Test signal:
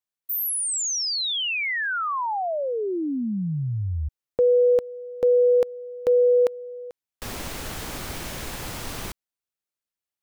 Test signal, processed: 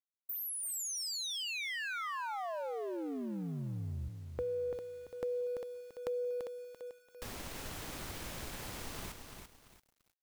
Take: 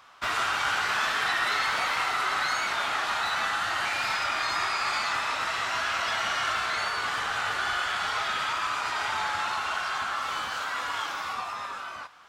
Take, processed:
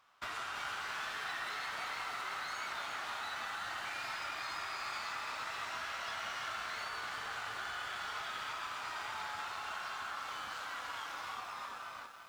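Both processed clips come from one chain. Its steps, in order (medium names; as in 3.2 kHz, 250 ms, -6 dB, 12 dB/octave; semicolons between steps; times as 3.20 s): companding laws mixed up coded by A; compression 2.5:1, threshold -34 dBFS; bit-crushed delay 339 ms, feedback 35%, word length 9-bit, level -6 dB; trim -7 dB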